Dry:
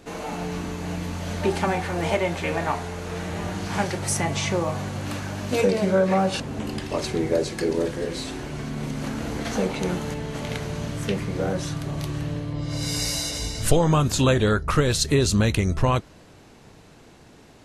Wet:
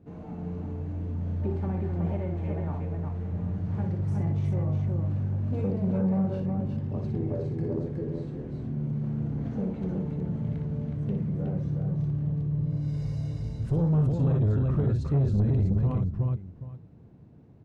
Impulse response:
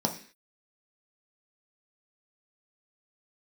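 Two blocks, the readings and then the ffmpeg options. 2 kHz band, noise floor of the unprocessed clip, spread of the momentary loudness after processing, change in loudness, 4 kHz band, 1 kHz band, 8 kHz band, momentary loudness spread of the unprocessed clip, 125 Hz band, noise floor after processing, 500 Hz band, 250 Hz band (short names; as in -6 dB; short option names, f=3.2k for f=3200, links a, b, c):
under -20 dB, -50 dBFS, 10 LU, -4.0 dB, under -25 dB, -16.5 dB, under -35 dB, 11 LU, +1.0 dB, -49 dBFS, -11.5 dB, -3.0 dB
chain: -filter_complex "[0:a]bandpass=f=120:t=q:w=1.4:csg=0,asplit=2[a][b];[b]aecho=0:1:59|367|783:0.531|0.668|0.119[c];[a][c]amix=inputs=2:normalize=0,asoftclip=type=tanh:threshold=-20.5dB,volume=2dB"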